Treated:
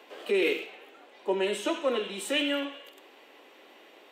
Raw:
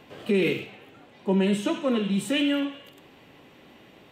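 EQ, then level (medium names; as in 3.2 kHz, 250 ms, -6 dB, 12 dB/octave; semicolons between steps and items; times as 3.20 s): high-pass 350 Hz 24 dB/octave; 0.0 dB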